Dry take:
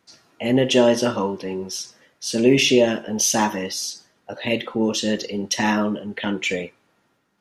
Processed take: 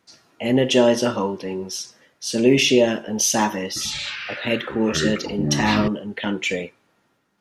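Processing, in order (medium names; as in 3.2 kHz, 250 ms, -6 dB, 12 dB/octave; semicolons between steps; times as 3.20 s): 3.67–5.88 s: ever faster or slower copies 88 ms, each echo -7 st, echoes 3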